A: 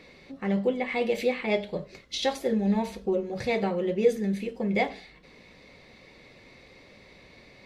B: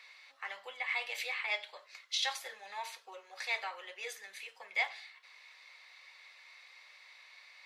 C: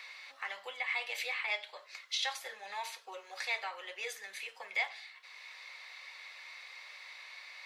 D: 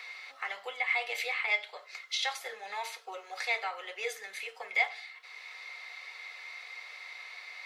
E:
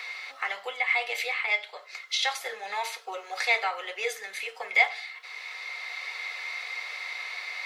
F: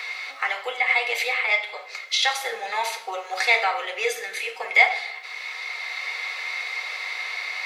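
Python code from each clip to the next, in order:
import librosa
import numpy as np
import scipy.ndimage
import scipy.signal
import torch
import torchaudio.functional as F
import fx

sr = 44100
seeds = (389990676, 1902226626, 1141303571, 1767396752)

y1 = scipy.signal.sosfilt(scipy.signal.butter(4, 990.0, 'highpass', fs=sr, output='sos'), x)
y1 = y1 * 10.0 ** (-1.0 / 20.0)
y2 = fx.band_squash(y1, sr, depth_pct=40)
y2 = y2 * 10.0 ** (1.0 / 20.0)
y3 = fx.small_body(y2, sr, hz=(450.0, 720.0, 1300.0, 2100.0), ring_ms=45, db=9)
y3 = y3 * 10.0 ** (1.5 / 20.0)
y4 = fx.rider(y3, sr, range_db=5, speed_s=2.0)
y4 = y4 * 10.0 ** (4.5 / 20.0)
y5 = fx.room_shoebox(y4, sr, seeds[0], volume_m3=350.0, walls='mixed', distance_m=0.53)
y5 = y5 * 10.0 ** (5.0 / 20.0)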